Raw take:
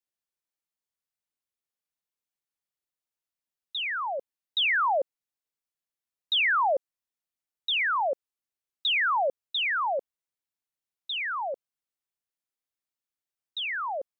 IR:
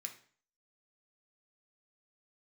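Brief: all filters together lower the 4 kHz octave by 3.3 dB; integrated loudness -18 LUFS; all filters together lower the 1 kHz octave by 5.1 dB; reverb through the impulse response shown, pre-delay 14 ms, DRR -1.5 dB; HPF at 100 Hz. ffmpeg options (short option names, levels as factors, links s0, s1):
-filter_complex "[0:a]highpass=100,equalizer=f=1000:t=o:g=-6.5,equalizer=f=4000:t=o:g=-4,asplit=2[s0][s1];[1:a]atrim=start_sample=2205,adelay=14[s2];[s1][s2]afir=irnorm=-1:irlink=0,volume=1.78[s3];[s0][s3]amix=inputs=2:normalize=0,volume=2.51"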